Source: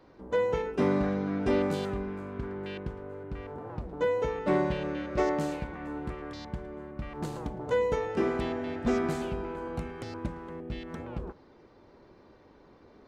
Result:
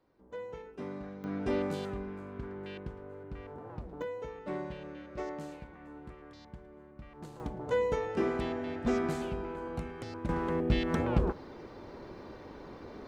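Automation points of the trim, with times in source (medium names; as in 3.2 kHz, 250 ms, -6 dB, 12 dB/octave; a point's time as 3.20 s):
-15 dB
from 1.24 s -5 dB
from 4.02 s -11.5 dB
from 7.40 s -2.5 dB
from 10.29 s +9.5 dB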